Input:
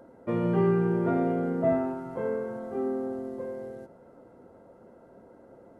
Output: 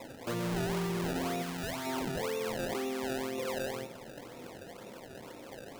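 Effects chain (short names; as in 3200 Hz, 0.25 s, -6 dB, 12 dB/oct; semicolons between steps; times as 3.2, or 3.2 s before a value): on a send at -9.5 dB: reverb RT60 0.65 s, pre-delay 6 ms; on the sum: hard clip -22 dBFS, distortion -12 dB; resonant high shelf 1800 Hz -13.5 dB, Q 3; in parallel at -2 dB: compressor, threshold -42 dBFS, peak gain reduction 19 dB; on the sum: decimation with a swept rate 28×, swing 100% 2 Hz; limiter -27 dBFS, peak gain reduction 10.5 dB; 1.42–1.87 bell 420 Hz -8 dB 1.6 oct; gain -1.5 dB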